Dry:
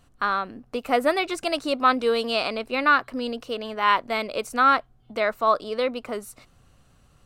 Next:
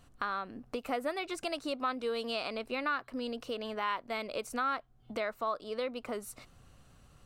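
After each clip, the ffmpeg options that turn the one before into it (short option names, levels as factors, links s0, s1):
-af "acompressor=threshold=0.0178:ratio=2.5,volume=0.841"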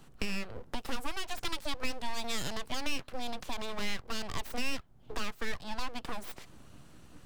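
-filter_complex "[0:a]equalizer=f=150:w=7:g=13.5,aeval=exprs='abs(val(0))':c=same,acrossover=split=160|3000[s0][s1][s2];[s1]acompressor=threshold=0.00794:ratio=6[s3];[s0][s3][s2]amix=inputs=3:normalize=0,volume=1.78"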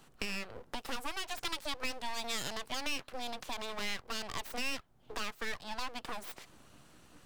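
-af "lowshelf=f=270:g=-9"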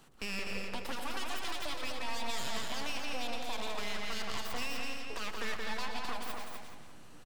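-filter_complex "[0:a]asplit=2[s0][s1];[s1]adelay=174,lowpass=f=5000:p=1,volume=0.562,asplit=2[s2][s3];[s3]adelay=174,lowpass=f=5000:p=1,volume=0.46,asplit=2[s4][s5];[s5]adelay=174,lowpass=f=5000:p=1,volume=0.46,asplit=2[s6][s7];[s7]adelay=174,lowpass=f=5000:p=1,volume=0.46,asplit=2[s8][s9];[s9]adelay=174,lowpass=f=5000:p=1,volume=0.46,asplit=2[s10][s11];[s11]adelay=174,lowpass=f=5000:p=1,volume=0.46[s12];[s2][s4][s6][s8][s10][s12]amix=inputs=6:normalize=0[s13];[s0][s13]amix=inputs=2:normalize=0,alimiter=level_in=1.58:limit=0.0631:level=0:latency=1:release=11,volume=0.631,asplit=2[s14][s15];[s15]aecho=0:1:116.6|250.7:0.282|0.562[s16];[s14][s16]amix=inputs=2:normalize=0"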